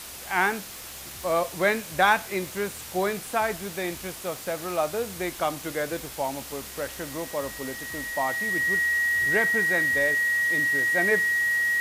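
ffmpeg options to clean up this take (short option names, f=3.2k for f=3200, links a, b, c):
-af "adeclick=t=4,bandreject=f=1.9k:w=30,afwtdn=0.011"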